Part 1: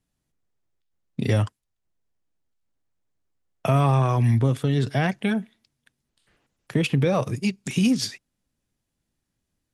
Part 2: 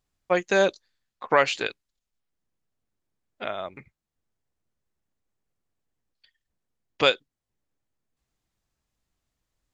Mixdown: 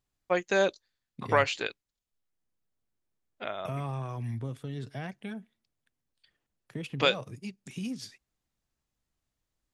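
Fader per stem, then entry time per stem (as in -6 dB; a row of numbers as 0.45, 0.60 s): -15.5, -4.5 dB; 0.00, 0.00 s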